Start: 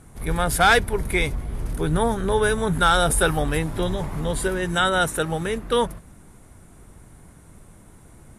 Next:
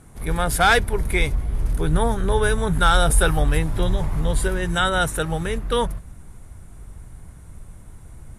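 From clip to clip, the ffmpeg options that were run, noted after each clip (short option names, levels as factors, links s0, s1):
-af "asubboost=boost=3:cutoff=130"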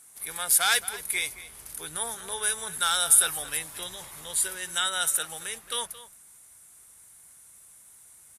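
-filter_complex "[0:a]aderivative,asplit=2[s0][s1];[s1]adelay=221.6,volume=0.178,highshelf=f=4000:g=-4.99[s2];[s0][s2]amix=inputs=2:normalize=0,volume=1.78"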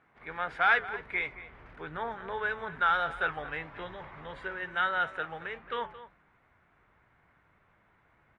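-af "lowpass=f=2100:w=0.5412,lowpass=f=2100:w=1.3066,flanger=delay=6.4:depth=2.4:regen=-86:speed=1.6:shape=sinusoidal,volume=2.37"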